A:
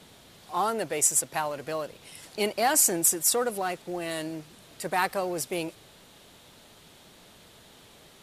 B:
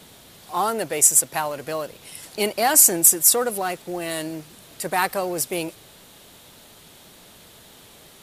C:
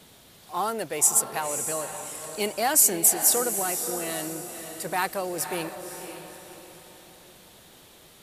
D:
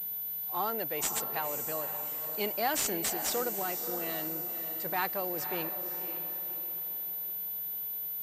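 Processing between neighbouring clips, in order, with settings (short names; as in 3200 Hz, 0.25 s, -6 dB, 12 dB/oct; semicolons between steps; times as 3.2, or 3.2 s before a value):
high shelf 11000 Hz +11.5 dB; gain +4 dB
diffused feedback echo 0.535 s, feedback 42%, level -8.5 dB; gain -5 dB
pulse-width modulation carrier 14000 Hz; gain -5.5 dB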